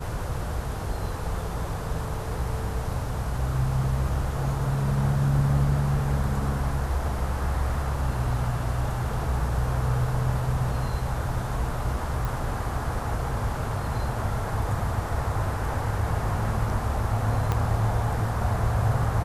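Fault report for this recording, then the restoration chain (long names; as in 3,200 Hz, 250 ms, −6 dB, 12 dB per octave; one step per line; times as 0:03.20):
0:12.25: click
0:17.52: click −12 dBFS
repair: click removal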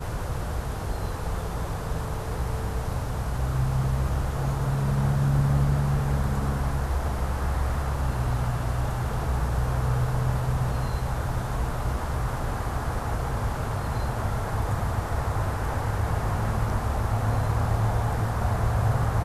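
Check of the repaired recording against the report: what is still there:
0:12.25: click
0:17.52: click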